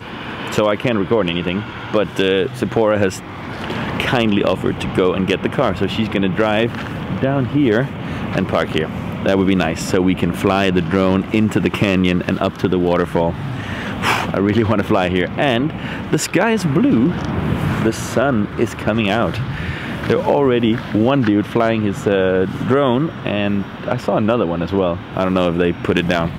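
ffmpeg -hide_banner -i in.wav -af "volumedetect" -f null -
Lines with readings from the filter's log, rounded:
mean_volume: -17.2 dB
max_volume: -3.4 dB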